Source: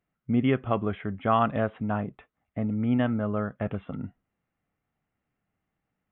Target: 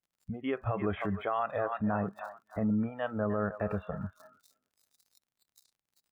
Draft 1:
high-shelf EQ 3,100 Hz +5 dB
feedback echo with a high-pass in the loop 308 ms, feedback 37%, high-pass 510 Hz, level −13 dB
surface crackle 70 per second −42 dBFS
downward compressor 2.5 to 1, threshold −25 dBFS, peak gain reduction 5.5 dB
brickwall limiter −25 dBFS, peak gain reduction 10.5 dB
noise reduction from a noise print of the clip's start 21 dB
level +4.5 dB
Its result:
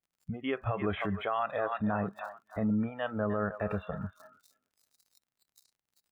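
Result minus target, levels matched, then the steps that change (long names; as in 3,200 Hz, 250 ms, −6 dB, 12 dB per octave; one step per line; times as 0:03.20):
4,000 Hz band +5.5 dB
change: high-shelf EQ 3,100 Hz −6.5 dB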